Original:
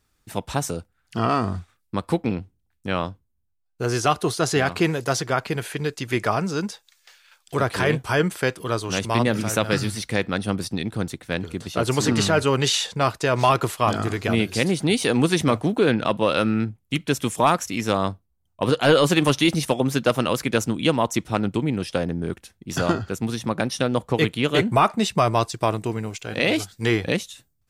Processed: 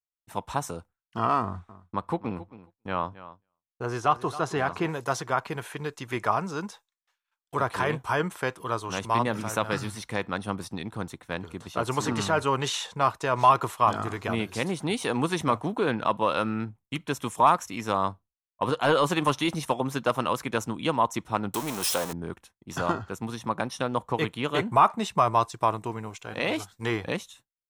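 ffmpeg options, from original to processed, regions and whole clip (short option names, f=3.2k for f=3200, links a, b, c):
-filter_complex "[0:a]asettb=1/sr,asplit=3[a][b][c];[a]atrim=end=1.424[d];[b]atrim=start=1.42:end=4.89,asetpts=PTS-STARTPTS,afade=t=in:d=0.004:c=qsin,afade=t=out:st=3.466:d=0.004:c=qsin,highshelf=f=4.2k:g=-9,aecho=1:1:271|542:0.158|0.0269,atrim=end_sample=153027[e];[c]atrim=start=4.886[f];[d][e]acrossfade=d=0.004:c1=hsin:c2=qsin[g];[g][f]acrossfade=d=0.004:c1=qsin:c2=hsin,asettb=1/sr,asplit=3[h][i][j];[h]atrim=end=21.544[k];[i]atrim=start=21.54:end=22.13,asetpts=PTS-STARTPTS,afade=t=in:d=0.004:c=qsin,afade=t=out:st=0.586:d=0.004:c=qsin,aeval=exprs='val(0)+0.5*0.0562*sgn(val(0))':c=same,bass=f=250:g=-9,treble=f=4k:g=15[l];[j]atrim=start=22.126[m];[k][l]acrossfade=d=0.004:c1=hsin:c2=qsin[n];[n][m]acrossfade=d=0.004:c1=qsin:c2=hsin,bandreject=f=4.7k:w=10,agate=range=-33dB:threshold=-39dB:ratio=3:detection=peak,equalizer=f=1k:t=o:w=0.88:g=11,volume=-8.5dB"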